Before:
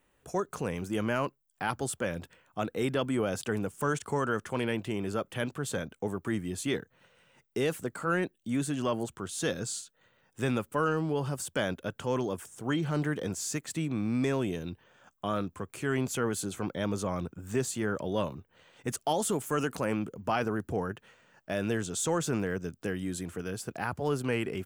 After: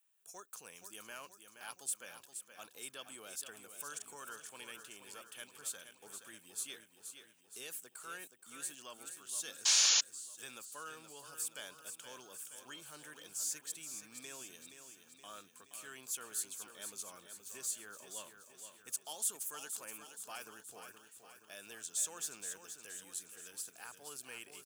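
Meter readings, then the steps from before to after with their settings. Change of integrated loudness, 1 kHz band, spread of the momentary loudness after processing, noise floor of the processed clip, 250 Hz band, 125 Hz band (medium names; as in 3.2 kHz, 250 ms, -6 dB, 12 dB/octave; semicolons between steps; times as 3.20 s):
-7.0 dB, -17.0 dB, 16 LU, -65 dBFS, -29.5 dB, under -30 dB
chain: on a send: feedback delay 473 ms, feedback 56%, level -8.5 dB; on the sum: painted sound noise, 9.65–10.01 s, 440–7200 Hz -21 dBFS; differentiator; band-stop 2 kHz, Q 8.6; trim -2 dB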